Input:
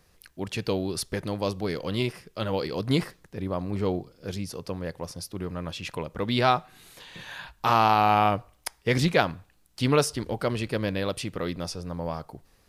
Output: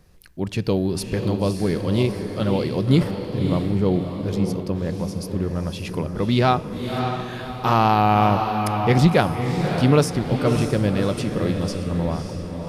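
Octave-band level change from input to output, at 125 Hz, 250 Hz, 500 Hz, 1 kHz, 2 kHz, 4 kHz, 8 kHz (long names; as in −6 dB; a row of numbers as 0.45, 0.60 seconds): +10.0, +9.0, +5.5, +3.5, +2.0, +1.5, +1.0 decibels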